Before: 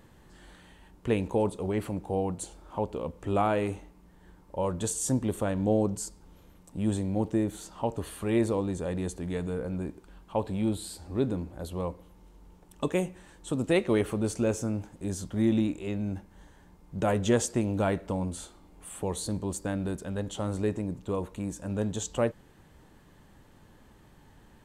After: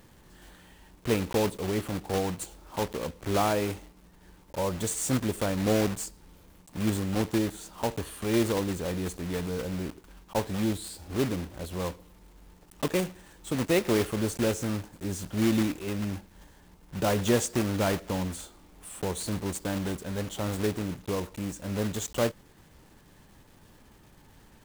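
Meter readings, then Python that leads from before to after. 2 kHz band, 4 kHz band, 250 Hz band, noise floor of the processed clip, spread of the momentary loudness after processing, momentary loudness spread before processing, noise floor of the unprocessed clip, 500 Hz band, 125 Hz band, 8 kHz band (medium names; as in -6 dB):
+4.0 dB, +6.5 dB, 0.0 dB, -57 dBFS, 10 LU, 10 LU, -57 dBFS, 0.0 dB, 0.0 dB, +2.0 dB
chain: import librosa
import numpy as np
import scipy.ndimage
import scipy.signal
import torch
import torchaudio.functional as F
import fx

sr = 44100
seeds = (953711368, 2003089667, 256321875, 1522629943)

y = fx.block_float(x, sr, bits=3)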